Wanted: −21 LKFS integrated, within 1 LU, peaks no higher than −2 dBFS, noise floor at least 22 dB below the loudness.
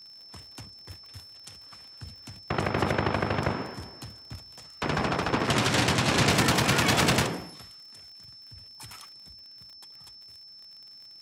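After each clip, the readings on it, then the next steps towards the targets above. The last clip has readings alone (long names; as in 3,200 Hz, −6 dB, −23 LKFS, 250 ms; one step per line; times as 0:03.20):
crackle rate 43 per second; interfering tone 5,300 Hz; level of the tone −46 dBFS; integrated loudness −25.5 LKFS; sample peak −9.0 dBFS; target loudness −21.0 LKFS
→ click removal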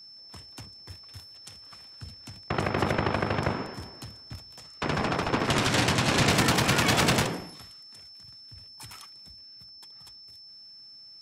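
crackle rate 0.18 per second; interfering tone 5,300 Hz; level of the tone −46 dBFS
→ notch filter 5,300 Hz, Q 30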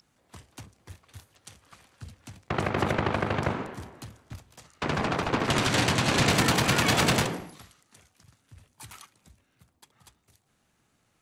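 interfering tone none found; integrated loudness −25.5 LKFS; sample peak −9.0 dBFS; target loudness −21.0 LKFS
→ level +4.5 dB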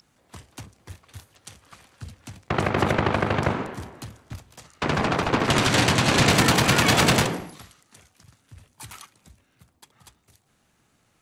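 integrated loudness −21.0 LKFS; sample peak −4.5 dBFS; background noise floor −67 dBFS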